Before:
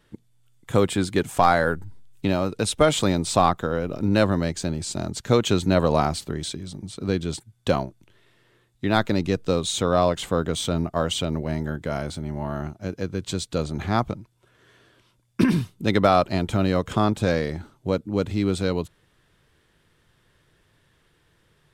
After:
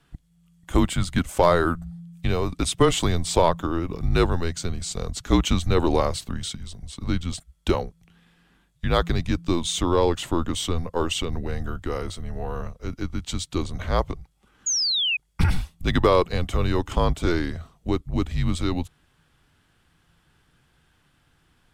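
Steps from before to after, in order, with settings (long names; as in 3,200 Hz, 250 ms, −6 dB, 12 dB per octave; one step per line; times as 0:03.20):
sound drawn into the spectrogram fall, 0:14.66–0:15.17, 2,600–7,100 Hz −23 dBFS
frequency shifter −170 Hz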